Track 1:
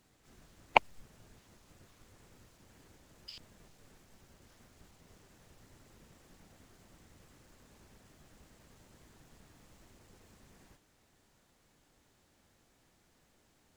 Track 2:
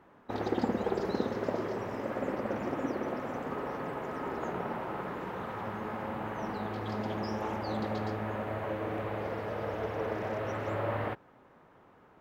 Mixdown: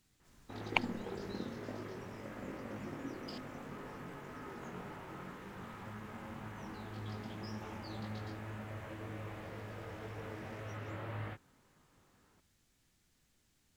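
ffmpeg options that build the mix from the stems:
-filter_complex "[0:a]volume=-2dB[a];[1:a]flanger=delay=19.5:depth=2.6:speed=1.9,adelay=200,volume=-1.5dB[b];[a][b]amix=inputs=2:normalize=0,equalizer=f=640:t=o:w=2.3:g=-10.5"

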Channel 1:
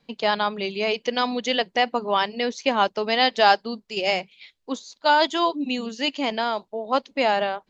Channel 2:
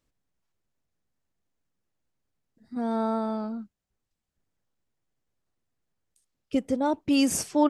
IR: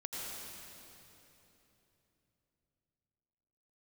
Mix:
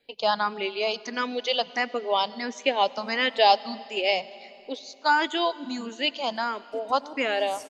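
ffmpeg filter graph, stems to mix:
-filter_complex "[0:a]asplit=2[a][b];[b]afreqshift=1.5[c];[a][c]amix=inputs=2:normalize=1,volume=-0.5dB,asplit=3[d][e][f];[e]volume=-18.5dB[g];[1:a]adelay=200,volume=-12.5dB,asplit=2[h][i];[i]volume=-15dB[j];[f]apad=whole_len=347961[k];[h][k]sidechaincompress=threshold=-33dB:ratio=8:attack=16:release=189[l];[2:a]atrim=start_sample=2205[m];[g][j]amix=inputs=2:normalize=0[n];[n][m]afir=irnorm=-1:irlink=0[o];[d][l][o]amix=inputs=3:normalize=0,bass=f=250:g=-7,treble=f=4k:g=2"

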